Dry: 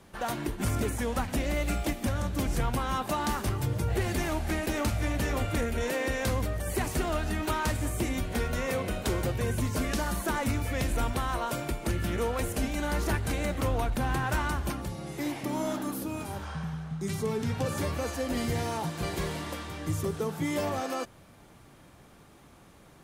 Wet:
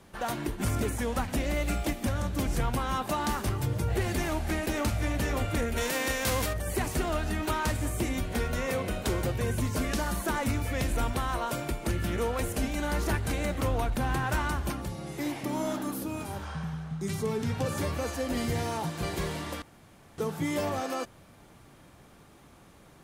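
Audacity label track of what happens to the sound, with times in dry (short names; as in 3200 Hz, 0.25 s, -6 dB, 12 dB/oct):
5.760000	6.520000	spectral whitening exponent 0.6
19.620000	20.180000	room tone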